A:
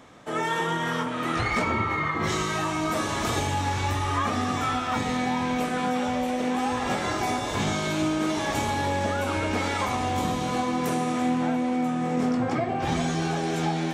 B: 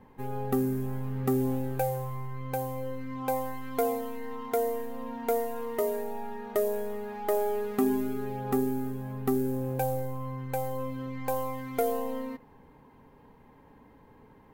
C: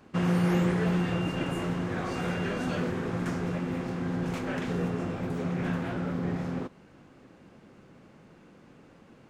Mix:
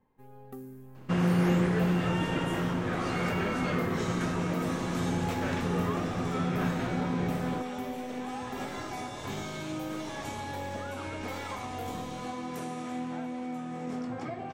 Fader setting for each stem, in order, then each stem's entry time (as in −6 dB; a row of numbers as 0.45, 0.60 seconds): −11.0, −16.5, 0.0 decibels; 1.70, 0.00, 0.95 seconds